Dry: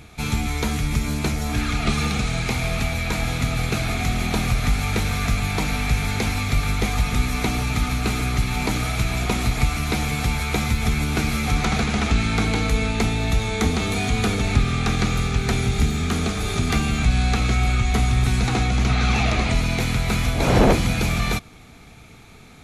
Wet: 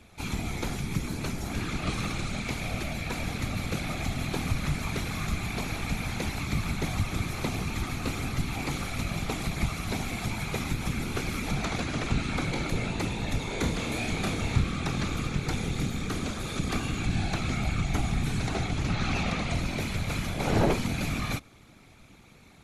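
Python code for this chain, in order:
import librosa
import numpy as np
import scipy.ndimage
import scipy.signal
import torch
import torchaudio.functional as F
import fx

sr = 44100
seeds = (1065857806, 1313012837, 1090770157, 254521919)

y = fx.whisperise(x, sr, seeds[0])
y = fx.doubler(y, sr, ms=30.0, db=-5.5, at=(13.47, 14.61))
y = y * 10.0 ** (-8.5 / 20.0)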